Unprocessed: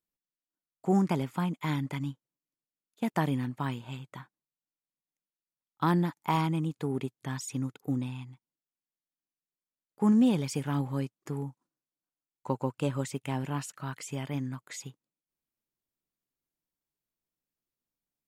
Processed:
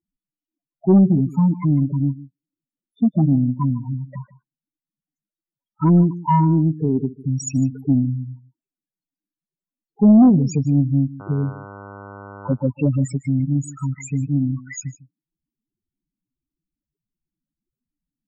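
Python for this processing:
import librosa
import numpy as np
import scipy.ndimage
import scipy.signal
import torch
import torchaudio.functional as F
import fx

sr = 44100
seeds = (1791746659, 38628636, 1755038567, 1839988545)

p1 = fx.spec_topn(x, sr, count=4)
p2 = fx.dmg_buzz(p1, sr, base_hz=100.0, harmonics=15, level_db=-53.0, tilt_db=-2, odd_only=False, at=(11.19, 12.53), fade=0.02)
p3 = p2 + 10.0 ** (-18.0 / 20.0) * np.pad(p2, (int(152 * sr / 1000.0), 0))[:len(p2)]
p4 = fx.fold_sine(p3, sr, drive_db=5, ceiling_db=-16.0)
p5 = p3 + (p4 * librosa.db_to_amplitude(-4.0))
y = p5 * librosa.db_to_amplitude(6.5)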